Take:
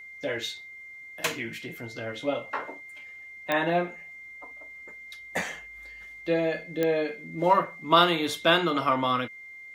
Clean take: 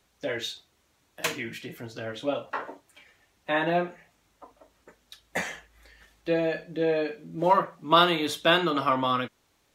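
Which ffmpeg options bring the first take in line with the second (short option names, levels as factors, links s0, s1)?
-af "adeclick=t=4,bandreject=f=2100:w=30"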